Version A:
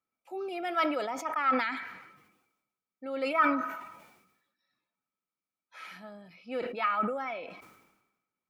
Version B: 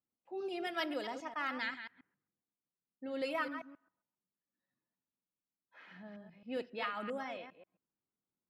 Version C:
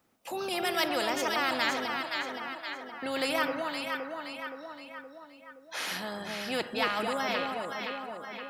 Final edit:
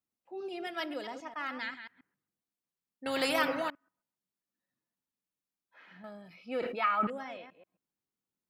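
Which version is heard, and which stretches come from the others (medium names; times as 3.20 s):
B
3.06–3.70 s: from C
6.04–7.07 s: from A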